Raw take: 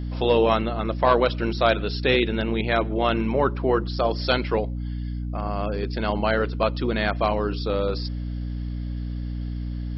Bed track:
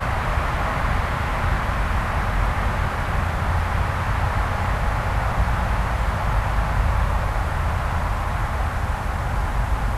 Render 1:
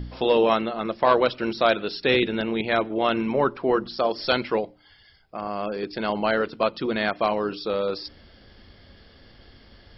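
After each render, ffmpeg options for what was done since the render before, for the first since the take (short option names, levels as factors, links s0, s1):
-af "bandreject=f=60:t=h:w=4,bandreject=f=120:t=h:w=4,bandreject=f=180:t=h:w=4,bandreject=f=240:t=h:w=4,bandreject=f=300:t=h:w=4"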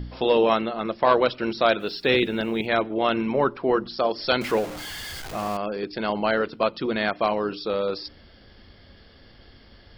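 -filter_complex "[0:a]asplit=3[s0][s1][s2];[s0]afade=t=out:st=1.79:d=0.02[s3];[s1]acrusher=bits=8:mix=0:aa=0.5,afade=t=in:st=1.79:d=0.02,afade=t=out:st=2.66:d=0.02[s4];[s2]afade=t=in:st=2.66:d=0.02[s5];[s3][s4][s5]amix=inputs=3:normalize=0,asettb=1/sr,asplit=3[s6][s7][s8];[s6]atrim=end=4.414[s9];[s7]atrim=start=4.41:end=5.57,asetpts=PTS-STARTPTS,afade=t=in:d=0.004:c=qsin,afade=t=out:st=1.156:d=0.004:c=qsin,aeval=exprs='val(0)+0.5*0.0316*sgn(val(0))':c=same[s10];[s8]atrim=start=5.566[s11];[s9][s10]acrossfade=d=0.004:c1=hsin:c2=qsin[s12];[s12][s11]acrossfade=d=0.004:c1=qsin:c2=hsin"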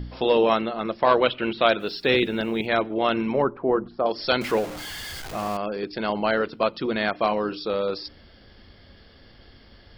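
-filter_complex "[0:a]asettb=1/sr,asplit=3[s0][s1][s2];[s0]atrim=end=1.234[s3];[s1]atrim=start=1.23:end=1.68,asetpts=PTS-STARTPTS,afade=t=in:d=0.004:c=qsin,afade=t=out:st=0.446:d=0.004:c=qsin,highshelf=f=4300:t=q:w=3:g=-11.5[s4];[s2]atrim=start=1.676[s5];[s3][s4]acrossfade=d=0.004:c1=hsin:c2=qsin[s6];[s6][s5]acrossfade=d=0.004:c1=qsin:c2=hsin,asettb=1/sr,asplit=3[s7][s8][s9];[s7]atrim=end=3.424[s10];[s8]atrim=start=3.42:end=4.06,asetpts=PTS-STARTPTS,afade=t=in:d=0.004:c=qsin,afade=t=out:st=0.636:d=0.004:c=qsin,lowpass=1200[s11];[s9]atrim=start=4.056[s12];[s10][s11]acrossfade=d=0.004:c1=hsin:c2=qsin[s13];[s13][s12]acrossfade=d=0.004:c1=qsin:c2=hsin,asettb=1/sr,asplit=3[s14][s15][s16];[s14]atrim=end=7.124[s17];[s15]atrim=start=7.12:end=7.65,asetpts=PTS-STARTPTS,afade=t=in:d=0.004:c=qsin,afade=t=out:st=0.526:d=0.004:c=qsin,asplit=2[s18][s19];[s19]adelay=23,volume=0.251[s20];[s18][s20]amix=inputs=2:normalize=0,atrim=end_sample=23373[s21];[s16]atrim=start=7.646[s22];[s17][s21]acrossfade=d=0.004:c1=hsin:c2=qsin[s23];[s23][s22]acrossfade=d=0.004:c1=qsin:c2=hsin"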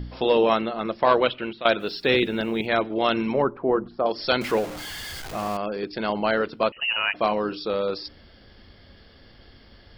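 -filter_complex "[0:a]asettb=1/sr,asplit=3[s0][s1][s2];[s0]atrim=end=2.824[s3];[s1]atrim=start=2.82:end=3.34,asetpts=PTS-STARTPTS,afade=t=in:d=0.004:c=qsin,afade=t=out:st=0.516:d=0.004:c=qsin,highshelf=f=7000:t=q:w=3:g=-12[s4];[s2]atrim=start=3.336[s5];[s3][s4]acrossfade=d=0.004:c1=hsin:c2=qsin[s6];[s6][s5]acrossfade=d=0.004:c1=qsin:c2=hsin,asettb=1/sr,asplit=3[s7][s8][s9];[s7]atrim=end=6.724[s10];[s8]atrim=start=6.72:end=7.14,asetpts=PTS-STARTPTS,afade=t=in:d=0.004:c=qsin,afade=t=out:st=0.416:d=0.004:c=qsin,lowpass=f=2600:t=q:w=0.5098,lowpass=f=2600:t=q:w=0.6013,lowpass=f=2600:t=q:w=0.9,lowpass=f=2600:t=q:w=2.563,afreqshift=-3100[s11];[s9]atrim=start=7.136[s12];[s10][s11]acrossfade=d=0.004:c1=hsin:c2=qsin[s13];[s13][s12]acrossfade=d=0.004:c1=qsin:c2=hsin,asplit=2[s14][s15];[s14]atrim=end=1.65,asetpts=PTS-STARTPTS,afade=t=out:st=1.07:d=0.58:c=qsin:silence=0.177828[s16];[s15]atrim=start=1.65,asetpts=PTS-STARTPTS,afade=t=in:d=0.004:c=hsin:silence=0.177828[s17];[s16][s17]concat=n=2:v=0:a=1"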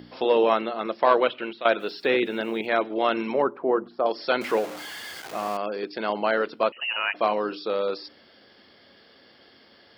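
-filter_complex "[0:a]acrossover=split=2700[s0][s1];[s1]acompressor=threshold=0.0126:ratio=4:attack=1:release=60[s2];[s0][s2]amix=inputs=2:normalize=0,highpass=280"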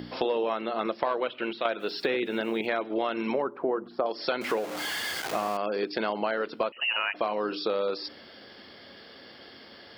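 -filter_complex "[0:a]asplit=2[s0][s1];[s1]alimiter=limit=0.168:level=0:latency=1:release=313,volume=0.944[s2];[s0][s2]amix=inputs=2:normalize=0,acompressor=threshold=0.0562:ratio=6"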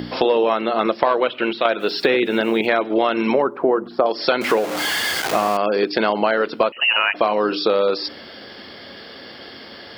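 -af "volume=3.35,alimiter=limit=0.794:level=0:latency=1"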